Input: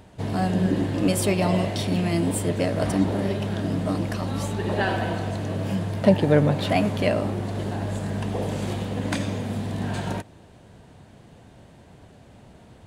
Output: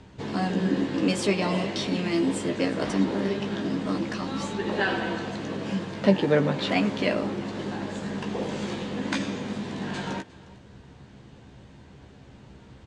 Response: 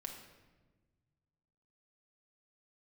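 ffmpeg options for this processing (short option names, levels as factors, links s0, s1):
-filter_complex "[0:a]lowpass=f=7000:w=0.5412,lowpass=f=7000:w=1.3066,equalizer=f=660:w=2.9:g=-8,acrossover=split=190[s0][s1];[s0]acompressor=threshold=0.00891:ratio=6[s2];[s2][s1]amix=inputs=2:normalize=0,asplit=2[s3][s4];[s4]adelay=15,volume=0.501[s5];[s3][s5]amix=inputs=2:normalize=0,aecho=1:1:357:0.0891"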